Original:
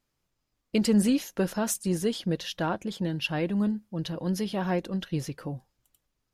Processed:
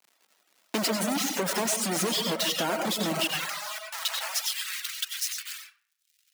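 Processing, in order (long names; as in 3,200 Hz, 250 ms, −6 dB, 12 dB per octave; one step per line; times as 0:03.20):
variable-slope delta modulation 64 kbit/s
low-pass filter 8,900 Hz 12 dB per octave
high-shelf EQ 6,800 Hz +6 dB
log-companded quantiser 2 bits
surface crackle 180 per second −51 dBFS
Bessel high-pass filter 290 Hz, order 8, from 0:03.30 1,400 Hz, from 0:04.40 2,700 Hz
comb and all-pass reverb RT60 0.75 s, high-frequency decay 0.5×, pre-delay 50 ms, DRR 1 dB
reverb reduction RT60 0.68 s
downward compressor, threshold −29 dBFS, peak gain reduction 6.5 dB
level +5 dB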